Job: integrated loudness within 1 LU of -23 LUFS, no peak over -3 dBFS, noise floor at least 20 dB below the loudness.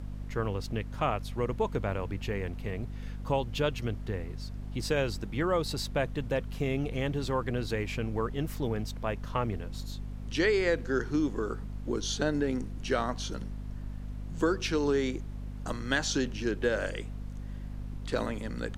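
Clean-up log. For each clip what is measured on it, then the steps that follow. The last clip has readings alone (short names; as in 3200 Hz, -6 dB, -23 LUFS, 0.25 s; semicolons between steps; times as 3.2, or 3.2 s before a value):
hum 50 Hz; harmonics up to 250 Hz; hum level -36 dBFS; noise floor -40 dBFS; noise floor target -53 dBFS; loudness -32.5 LUFS; peak -12.5 dBFS; loudness target -23.0 LUFS
-> de-hum 50 Hz, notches 5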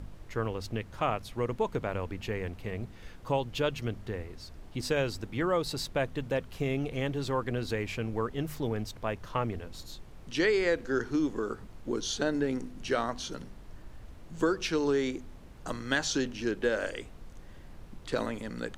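hum none; noise floor -49 dBFS; noise floor target -53 dBFS
-> noise print and reduce 6 dB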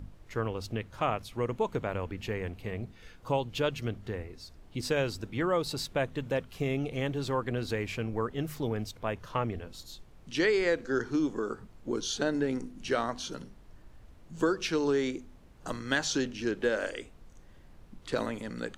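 noise floor -54 dBFS; loudness -32.5 LUFS; peak -13.0 dBFS; loudness target -23.0 LUFS
-> gain +9.5 dB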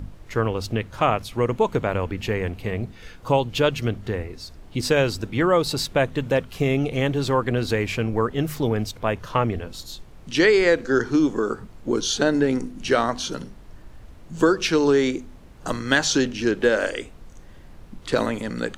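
loudness -23.0 LUFS; peak -3.5 dBFS; noise floor -45 dBFS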